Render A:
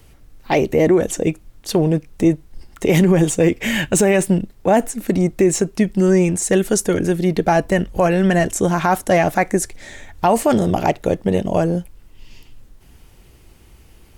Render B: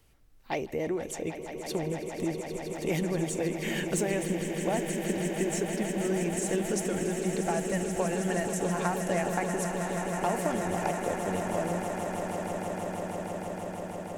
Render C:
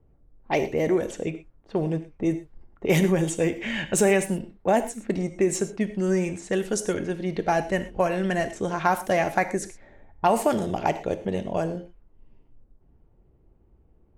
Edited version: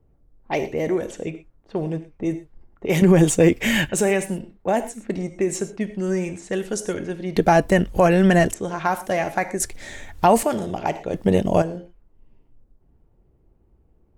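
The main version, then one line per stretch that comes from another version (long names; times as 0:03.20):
C
0:03.02–0:03.89: punch in from A
0:07.36–0:08.54: punch in from A
0:09.60–0:10.43: punch in from A
0:11.14–0:11.62: punch in from A
not used: B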